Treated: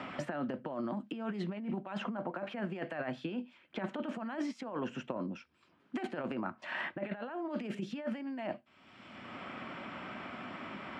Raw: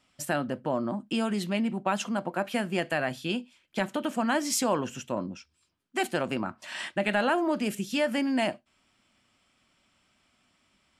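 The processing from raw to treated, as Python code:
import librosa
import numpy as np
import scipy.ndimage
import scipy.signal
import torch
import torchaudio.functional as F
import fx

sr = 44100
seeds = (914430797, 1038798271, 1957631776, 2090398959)

y = fx.over_compress(x, sr, threshold_db=-32.0, ratio=-0.5)
y = fx.bandpass_edges(y, sr, low_hz=170.0, high_hz=2100.0)
y = fx.band_squash(y, sr, depth_pct=100)
y = y * 10.0 ** (-3.5 / 20.0)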